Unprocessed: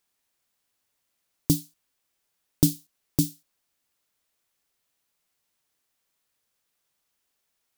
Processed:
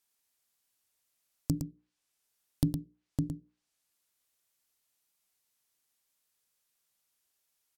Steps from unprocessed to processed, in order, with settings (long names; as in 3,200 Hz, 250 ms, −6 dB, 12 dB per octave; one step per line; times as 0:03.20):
mains-hum notches 60/120/180/240/300/360/420/480/540/600 Hz
treble cut that deepens with the level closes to 380 Hz, closed at −28 dBFS
high-shelf EQ 4,400 Hz +8 dB
on a send: single-tap delay 112 ms −8 dB
on the sum: level −6.5 dB